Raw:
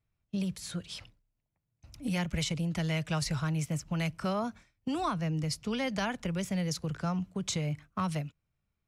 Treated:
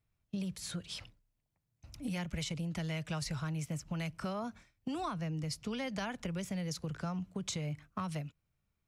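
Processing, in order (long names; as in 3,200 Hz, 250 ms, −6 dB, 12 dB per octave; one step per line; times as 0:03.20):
downward compressor 2.5 to 1, threshold −37 dBFS, peak gain reduction 7 dB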